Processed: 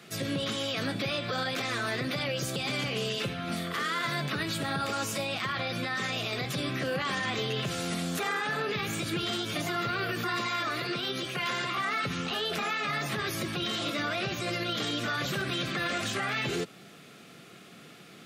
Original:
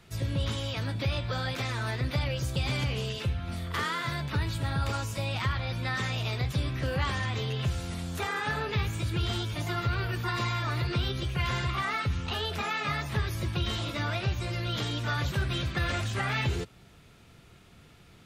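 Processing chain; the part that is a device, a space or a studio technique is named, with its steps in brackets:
PA system with an anti-feedback notch (high-pass filter 170 Hz 24 dB per octave; Butterworth band-reject 930 Hz, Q 5.8; brickwall limiter −30 dBFS, peak gain reduction 10.5 dB)
0:10.46–0:11.78: high-pass filter 220 Hz 6 dB per octave
level +7.5 dB

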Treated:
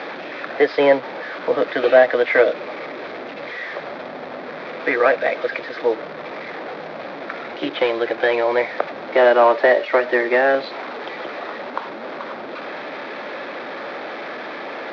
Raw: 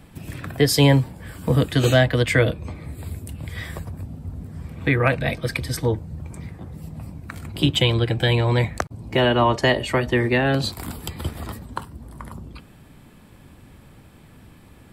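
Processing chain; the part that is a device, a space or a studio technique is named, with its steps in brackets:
digital answering machine (band-pass filter 340–3,100 Hz; linear delta modulator 32 kbit/s, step −29 dBFS; loudspeaker in its box 410–3,400 Hz, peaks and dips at 570 Hz +5 dB, 1,000 Hz −4 dB, 2,900 Hz −10 dB)
level +7 dB

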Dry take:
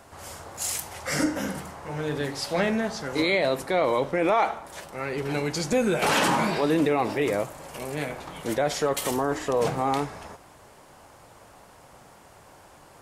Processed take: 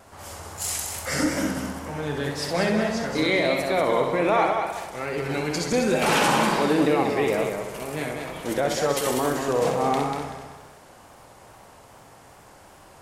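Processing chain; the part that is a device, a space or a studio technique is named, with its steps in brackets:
multi-head tape echo (echo machine with several playback heads 64 ms, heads first and third, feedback 49%, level −6 dB; tape wow and flutter)

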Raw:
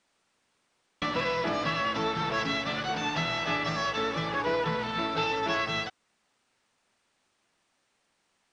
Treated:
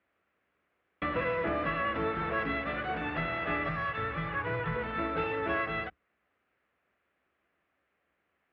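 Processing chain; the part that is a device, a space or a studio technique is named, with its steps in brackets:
sub-octave bass pedal (sub-octave generator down 2 octaves, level −3 dB; loudspeaker in its box 74–2,300 Hz, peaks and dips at 99 Hz −5 dB, 140 Hz −6 dB, 230 Hz −5 dB, 900 Hz −9 dB)
0:03.69–0:04.76: graphic EQ with 10 bands 125 Hz +8 dB, 250 Hz −8 dB, 500 Hz −6 dB

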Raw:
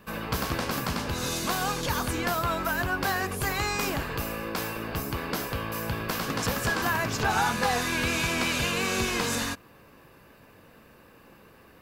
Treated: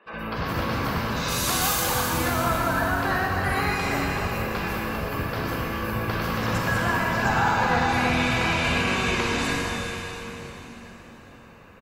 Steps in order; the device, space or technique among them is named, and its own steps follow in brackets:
0:01.16–0:01.72: RIAA equalisation recording
gate on every frequency bin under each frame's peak −25 dB strong
three-band delay without the direct sound mids, lows, highs 60/120 ms, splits 310/5,600 Hz
swimming-pool hall (convolution reverb RT60 4.3 s, pre-delay 33 ms, DRR −3.5 dB; high-shelf EQ 5,900 Hz −8 dB)

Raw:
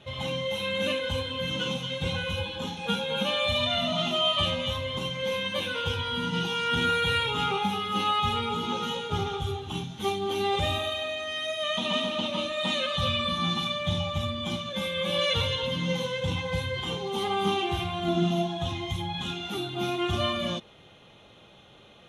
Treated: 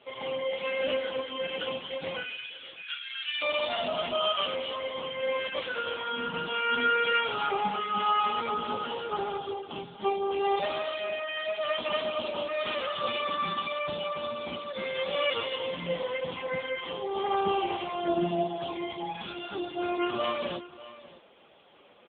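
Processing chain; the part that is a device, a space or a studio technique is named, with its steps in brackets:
0:02.23–0:03.42: inverse Chebyshev band-stop filter 110–810 Hz, stop band 40 dB
satellite phone (band-pass filter 310–3,000 Hz; single-tap delay 594 ms −17 dB; level +2 dB; AMR narrowband 6.7 kbit/s 8,000 Hz)

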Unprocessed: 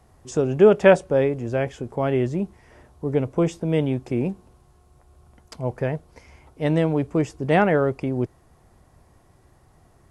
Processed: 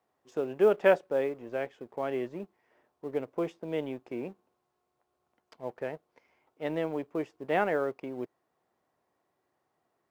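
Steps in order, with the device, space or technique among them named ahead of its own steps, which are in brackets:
phone line with mismatched companding (band-pass filter 320–3,600 Hz; mu-law and A-law mismatch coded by A)
level −7.5 dB

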